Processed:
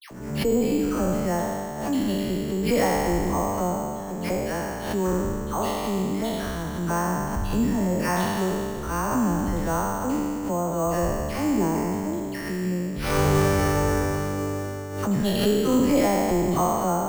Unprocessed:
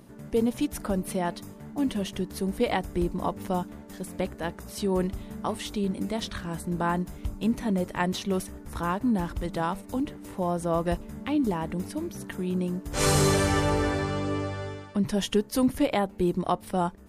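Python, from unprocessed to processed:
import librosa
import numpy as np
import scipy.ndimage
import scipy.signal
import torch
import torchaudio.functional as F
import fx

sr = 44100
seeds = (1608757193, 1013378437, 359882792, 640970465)

y = fx.spec_trails(x, sr, decay_s=2.34)
y = fx.high_shelf(y, sr, hz=3500.0, db=-9.0)
y = fx.dispersion(y, sr, late='lows', ms=113.0, hz=1600.0)
y = np.repeat(scipy.signal.resample_poly(y, 1, 6), 6)[:len(y)]
y = fx.pre_swell(y, sr, db_per_s=60.0)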